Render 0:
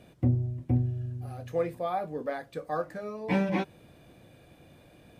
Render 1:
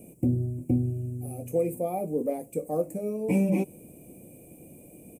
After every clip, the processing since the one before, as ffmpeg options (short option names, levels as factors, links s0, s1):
-filter_complex "[0:a]firequalizer=gain_entry='entry(110,0);entry(190,9);entry(270,9);entry(460,7);entry(1600,-29);entry(2400,-2);entry(3600,-26);entry(8000,8)':delay=0.05:min_phase=1,acrossover=split=1600[s0][s1];[s0]alimiter=limit=0.15:level=0:latency=1:release=119[s2];[s1]highshelf=f=3900:g=11.5[s3];[s2][s3]amix=inputs=2:normalize=0"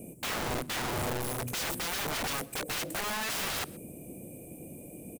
-af "aeval=exprs='(mod(39.8*val(0)+1,2)-1)/39.8':c=same,aecho=1:1:126:0.0631,volume=1.5"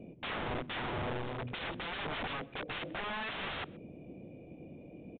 -af "aresample=8000,aresample=44100,volume=0.668"